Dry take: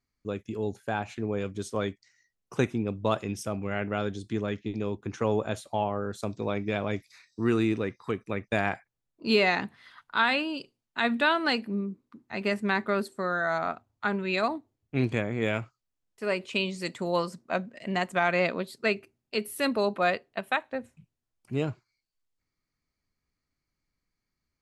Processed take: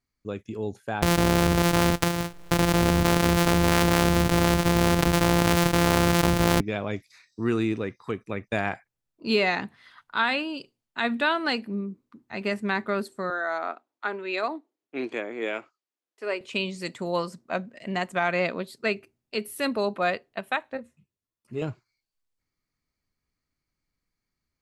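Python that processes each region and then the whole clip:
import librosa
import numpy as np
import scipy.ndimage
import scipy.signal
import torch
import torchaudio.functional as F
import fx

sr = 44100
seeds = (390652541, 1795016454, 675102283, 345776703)

y = fx.chain(x, sr, fx.sample_sort(block=256),
    fx.env_flatten(amount_pct=100), at=(1.02, 6.61))
y = fx.chain(y, sr, fx.cheby1_highpass(hz=310.0, order=3),
    fx.high_shelf(hz=7700.0, db=-11.0), at=(13.3, 16.41))
y = fx.chain(y, sr, fx.notch_comb(f0_hz=780.0),
    fx.ensemble(), at=(20.77, 21.62))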